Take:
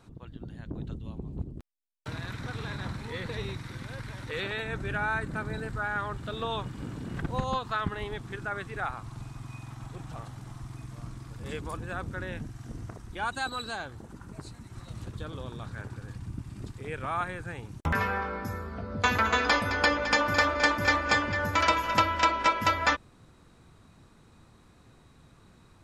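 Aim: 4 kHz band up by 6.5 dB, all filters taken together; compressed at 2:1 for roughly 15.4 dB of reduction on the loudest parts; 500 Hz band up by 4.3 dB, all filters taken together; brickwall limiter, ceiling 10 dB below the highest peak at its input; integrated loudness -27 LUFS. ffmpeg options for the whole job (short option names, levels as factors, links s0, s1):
-af "equalizer=f=500:t=o:g=5,equalizer=f=4000:t=o:g=8,acompressor=threshold=0.00501:ratio=2,volume=5.96,alimiter=limit=0.168:level=0:latency=1"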